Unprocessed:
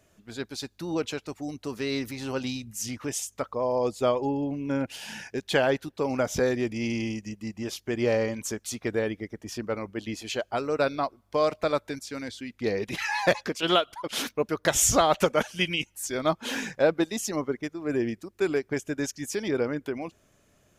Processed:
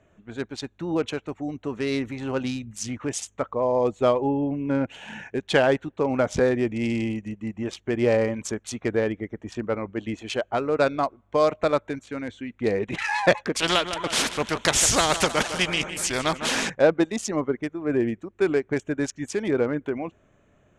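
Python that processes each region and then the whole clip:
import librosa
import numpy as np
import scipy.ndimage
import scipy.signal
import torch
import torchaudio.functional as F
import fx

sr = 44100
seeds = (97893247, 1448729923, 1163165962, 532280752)

y = fx.chain(x, sr, fx.echo_feedback(ms=155, feedback_pct=54, wet_db=-17.5),
    fx.spectral_comp(ratio=2.0), at=(13.55, 16.7))
y = fx.wiener(y, sr, points=9)
y = scipy.signal.sosfilt(scipy.signal.butter(4, 9400.0, 'lowpass', fs=sr, output='sos'), y)
y = F.gain(torch.from_numpy(y), 4.0).numpy()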